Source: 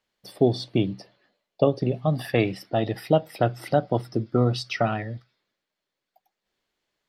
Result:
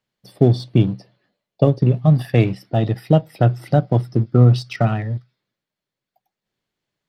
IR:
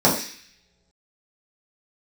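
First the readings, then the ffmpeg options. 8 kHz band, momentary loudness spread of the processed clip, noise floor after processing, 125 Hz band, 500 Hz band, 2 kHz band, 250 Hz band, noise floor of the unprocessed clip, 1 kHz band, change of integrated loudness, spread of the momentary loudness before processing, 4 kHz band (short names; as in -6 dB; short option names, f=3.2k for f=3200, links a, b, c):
n/a, 8 LU, under -85 dBFS, +12.0 dB, +2.5 dB, +0.5 dB, +6.5 dB, -85 dBFS, +1.5 dB, +7.0 dB, 5 LU, 0.0 dB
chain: -filter_complex "[0:a]equalizer=f=130:w=0.91:g=12,asplit=2[a][b];[b]aeval=exprs='sgn(val(0))*max(abs(val(0))-0.0355,0)':c=same,volume=-4dB[c];[a][c]amix=inputs=2:normalize=0,volume=-3dB"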